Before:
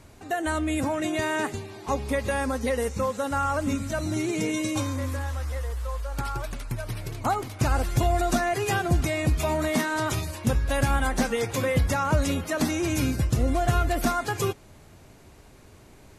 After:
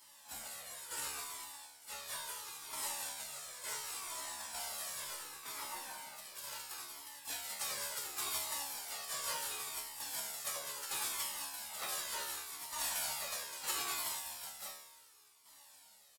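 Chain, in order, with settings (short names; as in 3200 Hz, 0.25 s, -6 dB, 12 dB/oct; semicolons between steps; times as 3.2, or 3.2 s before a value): on a send: loudspeakers at several distances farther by 12 m -12 dB, 69 m -5 dB; on the sum: whine 6100 Hz -48 dBFS; spectral gate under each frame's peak -30 dB weak; in parallel at -4.5 dB: sample-rate reducer 3600 Hz, jitter 0%; on the sum: formant-preserving pitch shift +5 st; bell 890 Hz +10 dB 0.28 oct; tremolo saw down 1.1 Hz, depth 70%; harmoniser -7 st -6 dB, +4 st -7 dB; tilt +2.5 dB/oct; notch 6200 Hz, Q 15; resonator 71 Hz, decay 0.84 s, harmonics all, mix 90%; cascading flanger falling 0.71 Hz; gain +12 dB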